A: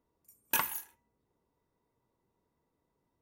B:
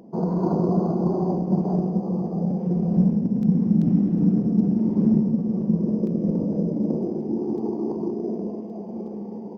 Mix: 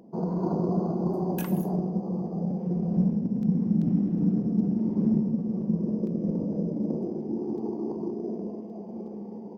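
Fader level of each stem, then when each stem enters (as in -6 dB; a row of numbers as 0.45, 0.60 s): -10.5, -5.0 dB; 0.85, 0.00 s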